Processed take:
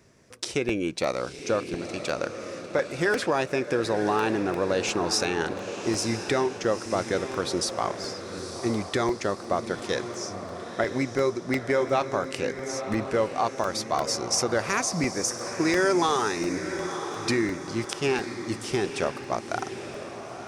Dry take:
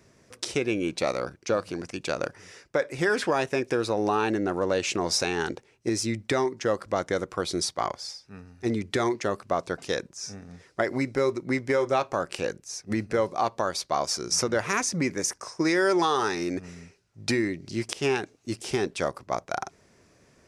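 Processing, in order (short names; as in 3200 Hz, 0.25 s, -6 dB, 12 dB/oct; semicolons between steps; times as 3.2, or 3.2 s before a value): diffused feedback echo 0.956 s, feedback 50%, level -9 dB; crackling interface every 0.35 s, samples 64, repeat, from 0.69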